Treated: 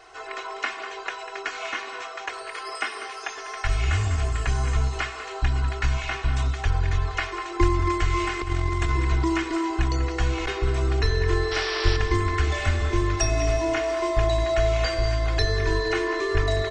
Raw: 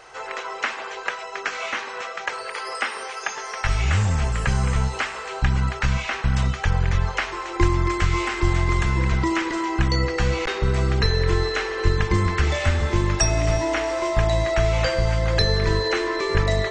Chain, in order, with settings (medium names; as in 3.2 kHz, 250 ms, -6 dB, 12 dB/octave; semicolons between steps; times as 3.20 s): comb 2.8 ms, depth 94%; 8.39–9.00 s: compressor with a negative ratio -17 dBFS, ratio -0.5; 11.51–11.97 s: painted sound noise 560–5800 Hz -25 dBFS; on a send: delay 196 ms -12 dB; on the sum: trim -6 dB